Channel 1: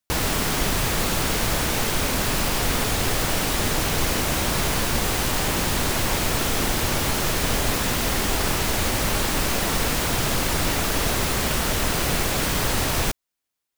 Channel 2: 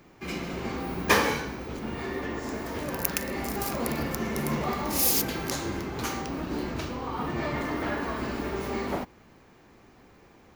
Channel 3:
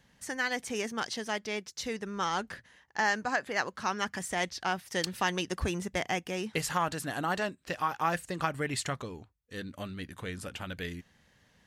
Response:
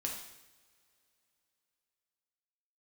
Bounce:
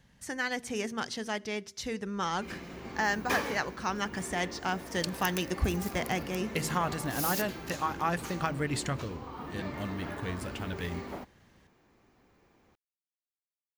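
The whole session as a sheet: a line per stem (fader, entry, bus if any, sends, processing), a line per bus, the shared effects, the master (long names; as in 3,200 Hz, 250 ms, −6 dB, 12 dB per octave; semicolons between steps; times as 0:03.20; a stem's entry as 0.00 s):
muted
−10.0 dB, 2.20 s, no send, no processing
−2.0 dB, 0.00 s, send −22.5 dB, low-shelf EQ 220 Hz +8 dB; hum removal 79.47 Hz, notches 7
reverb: on, pre-delay 3 ms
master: no processing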